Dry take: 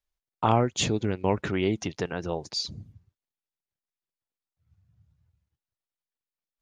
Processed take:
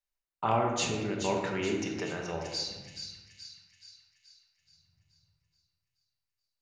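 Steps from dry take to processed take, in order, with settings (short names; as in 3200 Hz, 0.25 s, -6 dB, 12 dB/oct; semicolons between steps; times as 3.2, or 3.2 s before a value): low shelf 400 Hz -8.5 dB; notch 3300 Hz, Q 9.9; on a send: split-band echo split 2000 Hz, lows 82 ms, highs 0.427 s, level -7 dB; on the sum: shoebox room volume 590 m³, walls mixed, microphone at 1.2 m; gain -4.5 dB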